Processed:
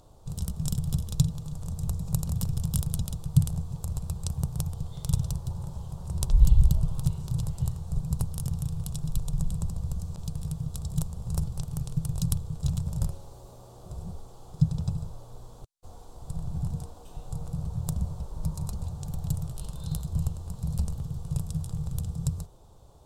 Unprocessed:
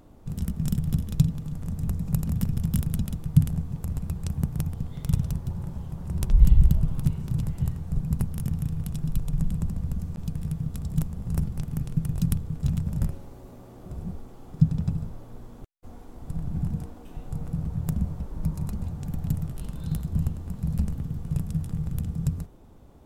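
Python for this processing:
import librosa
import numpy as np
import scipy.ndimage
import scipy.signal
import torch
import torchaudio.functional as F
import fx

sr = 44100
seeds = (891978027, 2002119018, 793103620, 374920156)

y = fx.graphic_eq(x, sr, hz=(125, 250, 500, 1000, 2000, 4000, 8000), db=(3, -12, 3, 5, -12, 8, 8))
y = F.gain(torch.from_numpy(y), -2.0).numpy()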